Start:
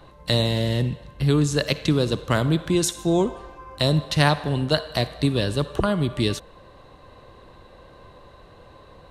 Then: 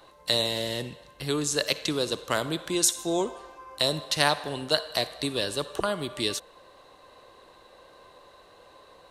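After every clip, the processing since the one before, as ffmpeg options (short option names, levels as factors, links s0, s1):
-af "bass=f=250:g=-15,treble=f=4000:g=7,volume=0.708"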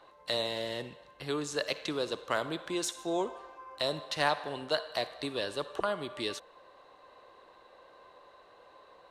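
-filter_complex "[0:a]asplit=2[s0][s1];[s1]highpass=f=720:p=1,volume=3.16,asoftclip=type=tanh:threshold=0.668[s2];[s0][s2]amix=inputs=2:normalize=0,lowpass=f=1500:p=1,volume=0.501,volume=0.531"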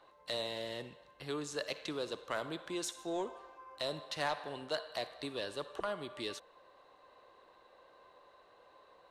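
-af "asoftclip=type=tanh:threshold=0.1,volume=0.562"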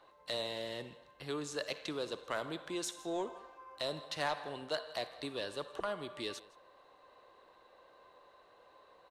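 -af "aecho=1:1:164:0.0841"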